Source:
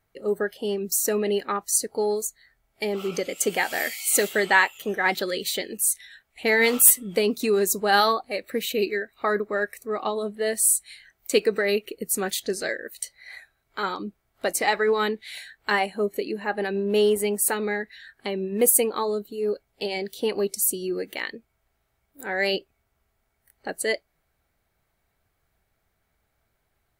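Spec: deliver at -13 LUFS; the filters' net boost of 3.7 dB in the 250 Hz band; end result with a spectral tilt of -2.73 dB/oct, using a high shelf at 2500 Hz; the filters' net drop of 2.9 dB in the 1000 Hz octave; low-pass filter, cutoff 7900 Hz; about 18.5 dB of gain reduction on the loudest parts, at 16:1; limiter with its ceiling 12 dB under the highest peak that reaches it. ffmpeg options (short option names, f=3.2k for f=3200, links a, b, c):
-af "lowpass=7.9k,equalizer=f=250:t=o:g=5,equalizer=f=1k:t=o:g=-5,highshelf=f=2.5k:g=5,acompressor=threshold=-32dB:ratio=16,volume=24.5dB,alimiter=limit=-2dB:level=0:latency=1"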